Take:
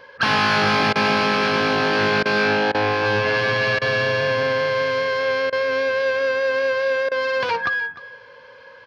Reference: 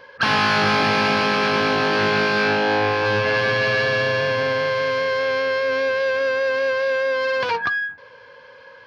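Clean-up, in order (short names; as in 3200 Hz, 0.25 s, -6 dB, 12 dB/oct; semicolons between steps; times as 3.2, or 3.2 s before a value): interpolate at 0.93/2.23/2.72/3.79/5.5/7.09, 24 ms; inverse comb 0.302 s -17 dB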